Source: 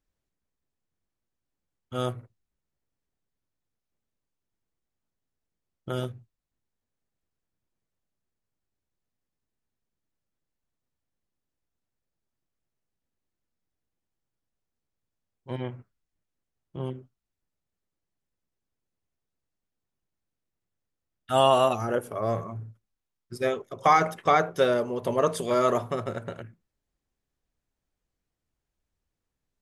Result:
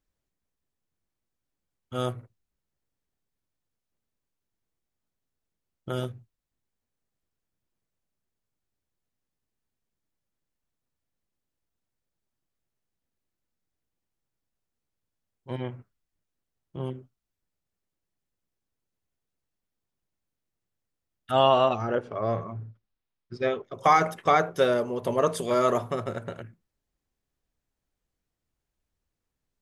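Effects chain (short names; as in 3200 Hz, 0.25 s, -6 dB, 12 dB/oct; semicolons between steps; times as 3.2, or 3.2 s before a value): 21.31–23.74 LPF 4800 Hz 24 dB/oct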